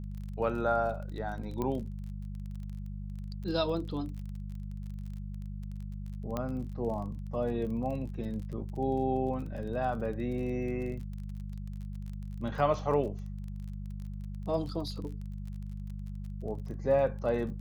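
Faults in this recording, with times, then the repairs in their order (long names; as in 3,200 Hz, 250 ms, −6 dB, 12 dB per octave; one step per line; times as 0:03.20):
surface crackle 27 per second −40 dBFS
mains hum 50 Hz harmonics 4 −39 dBFS
0:01.62: click −21 dBFS
0:06.37: click −20 dBFS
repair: click removal
hum removal 50 Hz, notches 4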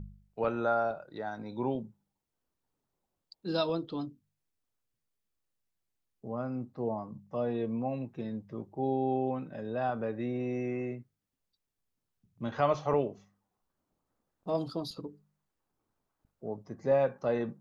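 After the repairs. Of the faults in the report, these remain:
none of them is left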